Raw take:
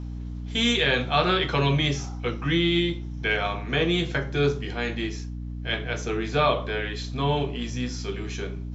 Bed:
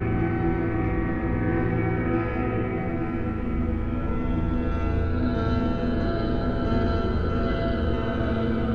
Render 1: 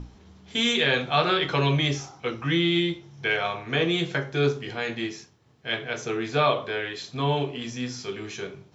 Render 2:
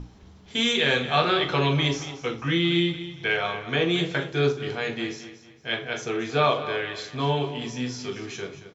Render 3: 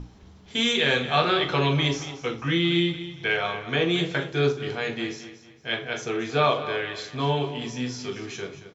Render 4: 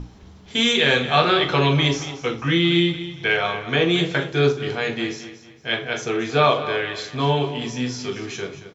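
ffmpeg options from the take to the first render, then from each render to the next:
-af "bandreject=f=60:t=h:w=6,bandreject=f=120:t=h:w=6,bandreject=f=180:t=h:w=6,bandreject=f=240:t=h:w=6,bandreject=f=300:t=h:w=6,bandreject=f=360:t=h:w=6"
-filter_complex "[0:a]asplit=2[a][b];[b]adelay=40,volume=-13dB[c];[a][c]amix=inputs=2:normalize=0,aecho=1:1:228|456|684:0.224|0.0761|0.0259"
-af anull
-af "volume=4.5dB"

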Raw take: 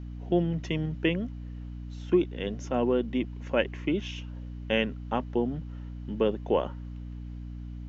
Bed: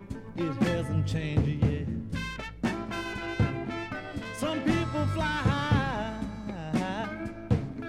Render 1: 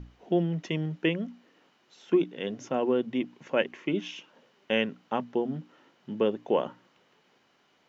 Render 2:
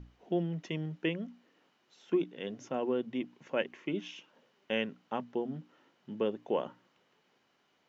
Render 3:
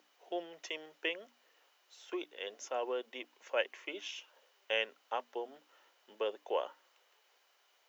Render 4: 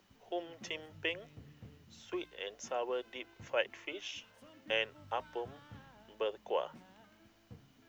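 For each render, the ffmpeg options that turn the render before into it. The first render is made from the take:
-af "bandreject=f=60:t=h:w=6,bandreject=f=120:t=h:w=6,bandreject=f=180:t=h:w=6,bandreject=f=240:t=h:w=6,bandreject=f=300:t=h:w=6"
-af "volume=-6dB"
-af "highpass=f=480:w=0.5412,highpass=f=480:w=1.3066,aemphasis=mode=production:type=50kf"
-filter_complex "[1:a]volume=-28.5dB[a];[0:a][a]amix=inputs=2:normalize=0"

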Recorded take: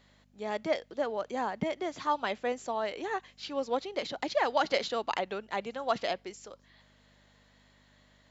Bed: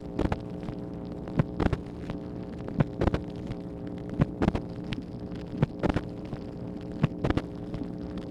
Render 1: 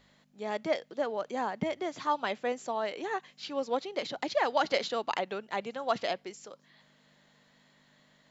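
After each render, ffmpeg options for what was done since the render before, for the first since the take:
-af "bandreject=f=50:t=h:w=4,bandreject=f=100:t=h:w=4"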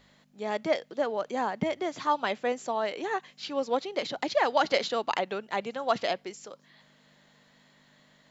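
-af "volume=3dB"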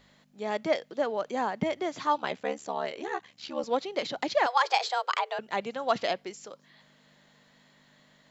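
-filter_complex "[0:a]asettb=1/sr,asplit=3[a][b][c];[a]atrim=end=2.174[d];[b]atrim=start=2.17:end=3.64,asetpts=PTS-STARTPTS,afade=t=in:d=0.004:c=qsin,afade=t=out:st=1.466:d=0.004:c=qsin,aeval=exprs='val(0)*sin(2*PI*36*n/s)':c=same[e];[c]atrim=start=3.636[f];[d][e]acrossfade=d=0.004:c1=hsin:c2=qsin[g];[g][f]acrossfade=d=0.004:c1=qsin:c2=hsin,asettb=1/sr,asplit=3[h][i][j];[h]atrim=end=4.464[k];[i]atrim=start=4.46:end=5.39,asetpts=PTS-STARTPTS,afade=t=in:d=0.004:c=qsin,afade=t=out:st=0.926:d=0.004:c=qsin,afreqshift=250[l];[j]atrim=start=5.386[m];[k][l]acrossfade=d=0.004:c1=hsin:c2=qsin[n];[n][m]acrossfade=d=0.004:c1=qsin:c2=hsin"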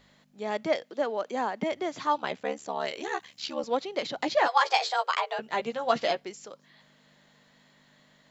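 -filter_complex "[0:a]asettb=1/sr,asplit=3[a][b][c];[a]atrim=end=0.824[d];[b]atrim=start=0.82:end=1.72,asetpts=PTS-STARTPTS,afade=t=in:d=0.004:c=qsin,afade=t=out:st=0.896:d=0.004:c=qsin,highpass=f=200:w=0.5412,highpass=f=200:w=1.3066[e];[c]atrim=start=1.716[f];[d][e]acrossfade=d=0.004:c1=hsin:c2=qsin[g];[g][f]acrossfade=d=0.004:c1=qsin:c2=hsin,asettb=1/sr,asplit=3[h][i][j];[h]atrim=end=2.804[k];[i]atrim=start=2.8:end=3.55,asetpts=PTS-STARTPTS,afade=t=in:d=0.004:c=qsin,afade=t=out:st=0.746:d=0.004:c=qsin,highshelf=f=2.6k:g=9.5[l];[j]atrim=start=3.546[m];[k][l]acrossfade=d=0.004:c1=hsin:c2=qsin[n];[n][m]acrossfade=d=0.004:c1=qsin:c2=hsin,asettb=1/sr,asplit=3[o][p][q];[o]atrim=end=4.194[r];[p]atrim=start=4.19:end=6.2,asetpts=PTS-STARTPTS,afade=t=in:d=0.004:c=qsin,afade=t=out:st=2.006:d=0.004:c=qsin,asplit=2[s][t];[t]adelay=13,volume=-4dB[u];[s][u]amix=inputs=2:normalize=0,atrim=end_sample=88641[v];[q]atrim=start=6.196[w];[r][v]acrossfade=d=0.004:c1=hsin:c2=qsin[x];[x][w]acrossfade=d=0.004:c1=qsin:c2=hsin"

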